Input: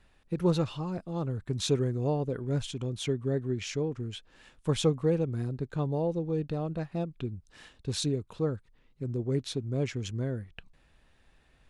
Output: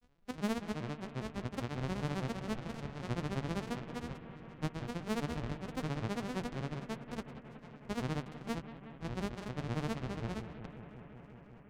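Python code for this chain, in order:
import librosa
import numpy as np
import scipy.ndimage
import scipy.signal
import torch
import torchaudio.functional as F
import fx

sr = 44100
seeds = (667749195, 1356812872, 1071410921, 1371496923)

p1 = np.r_[np.sort(x[:len(x) // 256 * 256].reshape(-1, 256), axis=1).ravel(), x[len(x) // 256 * 256:]]
p2 = scipy.signal.sosfilt(scipy.signal.butter(2, 5800.0, 'lowpass', fs=sr, output='sos'), p1)
p3 = 10.0 ** (-22.5 / 20.0) * np.tanh(p2 / 10.0 ** (-22.5 / 20.0))
p4 = fx.granulator(p3, sr, seeds[0], grain_ms=100.0, per_s=15.0, spray_ms=100.0, spread_st=7)
p5 = p4 + fx.echo_bbd(p4, sr, ms=183, stages=4096, feedback_pct=84, wet_db=-13.5, dry=0)
p6 = fx.vibrato_shape(p5, sr, shape='saw_up', rate_hz=5.0, depth_cents=100.0)
y = p6 * 10.0 ** (-4.0 / 20.0)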